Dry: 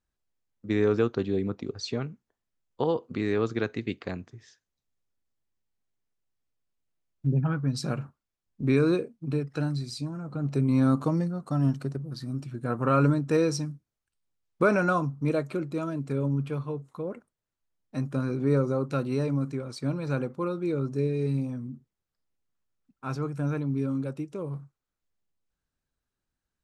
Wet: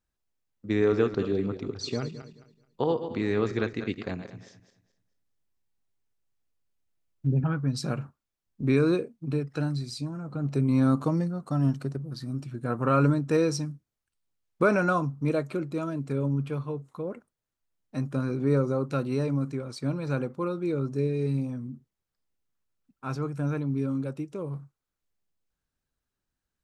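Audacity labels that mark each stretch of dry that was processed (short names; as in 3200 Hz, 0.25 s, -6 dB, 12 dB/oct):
0.710000	7.440000	regenerating reverse delay 0.108 s, feedback 50%, level -9.5 dB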